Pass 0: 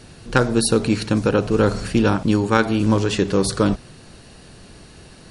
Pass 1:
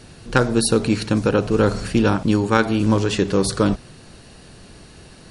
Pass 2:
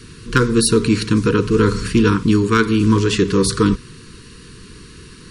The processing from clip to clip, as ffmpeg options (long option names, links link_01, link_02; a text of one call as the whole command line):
ffmpeg -i in.wav -af anull out.wav
ffmpeg -i in.wav -af "aeval=exprs='0.841*(cos(1*acos(clip(val(0)/0.841,-1,1)))-cos(1*PI/2))+0.0531*(cos(5*acos(clip(val(0)/0.841,-1,1)))-cos(5*PI/2))':channel_layout=same,asuperstop=centerf=680:order=20:qfactor=1.5,volume=2dB" out.wav